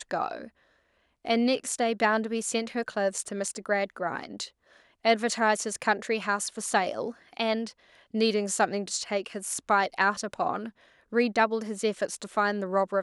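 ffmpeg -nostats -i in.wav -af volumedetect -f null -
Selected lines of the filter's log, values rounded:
mean_volume: -28.8 dB
max_volume: -9.0 dB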